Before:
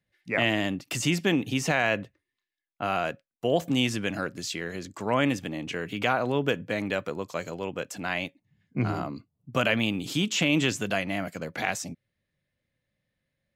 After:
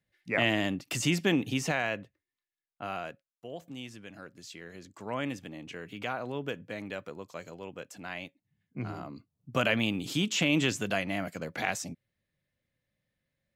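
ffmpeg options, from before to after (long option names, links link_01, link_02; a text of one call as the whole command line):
ffmpeg -i in.wav -af "volume=13dB,afade=type=out:start_time=1.45:duration=0.54:silence=0.473151,afade=type=out:start_time=2.91:duration=0.56:silence=0.354813,afade=type=in:start_time=4.07:duration=1.03:silence=0.398107,afade=type=in:start_time=9.01:duration=0.5:silence=0.446684" out.wav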